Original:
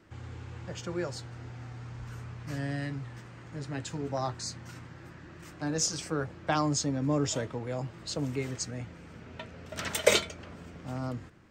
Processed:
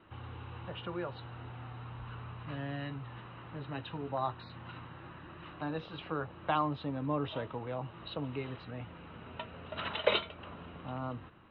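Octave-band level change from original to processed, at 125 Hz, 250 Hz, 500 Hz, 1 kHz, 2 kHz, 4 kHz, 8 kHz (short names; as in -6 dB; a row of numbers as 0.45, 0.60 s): -5.5 dB, -6.0 dB, -4.5 dB, 0.0 dB, -5.0 dB, -5.5 dB, under -40 dB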